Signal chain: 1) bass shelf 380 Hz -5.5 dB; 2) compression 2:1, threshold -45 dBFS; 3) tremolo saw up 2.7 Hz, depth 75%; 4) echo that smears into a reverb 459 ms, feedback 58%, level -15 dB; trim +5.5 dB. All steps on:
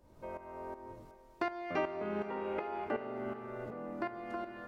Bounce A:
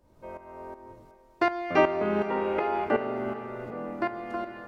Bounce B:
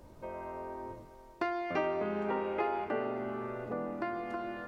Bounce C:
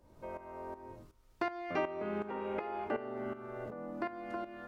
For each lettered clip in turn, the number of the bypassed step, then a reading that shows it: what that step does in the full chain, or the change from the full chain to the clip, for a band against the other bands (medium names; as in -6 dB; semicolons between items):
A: 2, mean gain reduction 7.0 dB; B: 3, crest factor change -1.5 dB; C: 4, echo-to-direct -13.0 dB to none